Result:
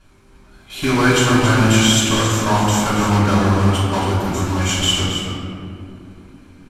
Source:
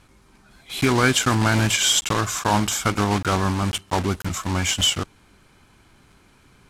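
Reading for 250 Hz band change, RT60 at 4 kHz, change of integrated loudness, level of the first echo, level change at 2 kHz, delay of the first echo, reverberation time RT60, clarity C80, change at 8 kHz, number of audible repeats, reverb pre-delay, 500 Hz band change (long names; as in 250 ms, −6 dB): +7.5 dB, 1.2 s, +4.5 dB, −7.0 dB, +4.0 dB, 276 ms, 2.7 s, 0.0 dB, +1.5 dB, 1, 3 ms, +6.0 dB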